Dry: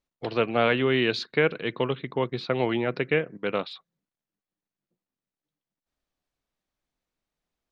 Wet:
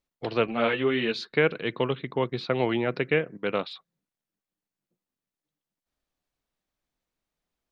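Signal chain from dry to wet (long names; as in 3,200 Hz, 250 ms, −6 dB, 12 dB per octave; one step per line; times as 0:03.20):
0:00.47–0:01.33: string-ensemble chorus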